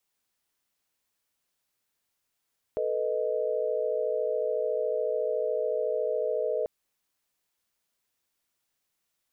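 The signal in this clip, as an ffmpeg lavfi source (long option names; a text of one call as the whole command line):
ffmpeg -f lavfi -i "aevalsrc='0.0316*(sin(2*PI*440*t)+sin(2*PI*493.88*t)+sin(2*PI*622.25*t))':duration=3.89:sample_rate=44100" out.wav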